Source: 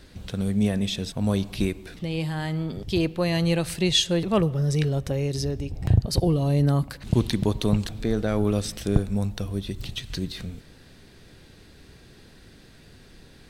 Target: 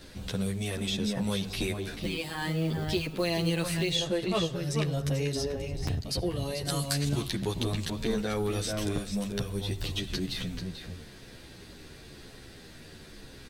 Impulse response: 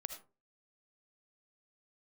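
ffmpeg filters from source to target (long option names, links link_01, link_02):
-filter_complex "[0:a]asplit=2[link_01][link_02];[link_02]adelay=437.3,volume=-7dB,highshelf=frequency=4000:gain=-9.84[link_03];[link_01][link_03]amix=inputs=2:normalize=0,acrossover=split=1500|3600[link_04][link_05][link_06];[link_04]acompressor=threshold=-28dB:ratio=4[link_07];[link_05]acompressor=threshold=-38dB:ratio=4[link_08];[link_06]acompressor=threshold=-41dB:ratio=4[link_09];[link_07][link_08][link_09]amix=inputs=3:normalize=0,asplit=2[link_10][link_11];[link_11]asoftclip=type=tanh:threshold=-32.5dB,volume=-11dB[link_12];[link_10][link_12]amix=inputs=2:normalize=0,bass=frequency=250:gain=-3,treble=frequency=4000:gain=2,asplit=2[link_13][link_14];[1:a]atrim=start_sample=2205[link_15];[link_14][link_15]afir=irnorm=-1:irlink=0,volume=-11.5dB[link_16];[link_13][link_16]amix=inputs=2:normalize=0,asettb=1/sr,asplit=3[link_17][link_18][link_19];[link_17]atrim=end=1.994[link_20];[link_18]atrim=start=1.99:end=3.95,asetpts=PTS-STARTPTS,afade=type=in:duration=0.004:curve=qsin,afade=type=out:start_time=1.956:duration=0.004:curve=qsin,acrusher=bits=6:mode=log:mix=0:aa=0.000001[link_21];[link_19]atrim=start=3.946[link_22];[link_20][link_21]acrossfade=duration=0.004:curve1=hsin:curve2=qsin[link_23];[link_23][link_22]acrossfade=duration=0.004:curve1=qsin:curve2=hsin,asettb=1/sr,asplit=3[link_24][link_25][link_26];[link_24]atrim=end=6.654[link_27];[link_25]atrim=start=6.65:end=7.08,asetpts=PTS-STARTPTS,afade=type=in:duration=0.004:curve=qsin,afade=type=out:start_time=0.426:duration=0.004:curve=qsin,equalizer=frequency=7500:width=0.52:gain=14.5[link_28];[link_26]atrim=start=7.076[link_29];[link_27][link_28]acrossfade=duration=0.004:curve1=hsin:curve2=qsin[link_30];[link_30][link_29]acrossfade=duration=0.004:curve1=qsin:curve2=hsin,asplit=2[link_31][link_32];[link_32]adelay=11.1,afreqshift=-0.99[link_33];[link_31][link_33]amix=inputs=2:normalize=1,volume=2dB"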